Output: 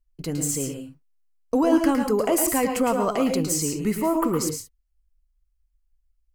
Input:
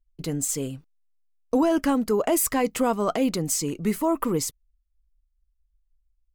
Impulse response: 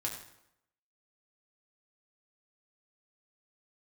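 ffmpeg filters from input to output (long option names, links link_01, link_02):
-filter_complex "[0:a]bandreject=frequency=3600:width=7.6,asplit=2[link_01][link_02];[1:a]atrim=start_sample=2205,atrim=end_sample=3528,adelay=109[link_03];[link_02][link_03]afir=irnorm=-1:irlink=0,volume=-5.5dB[link_04];[link_01][link_04]amix=inputs=2:normalize=0"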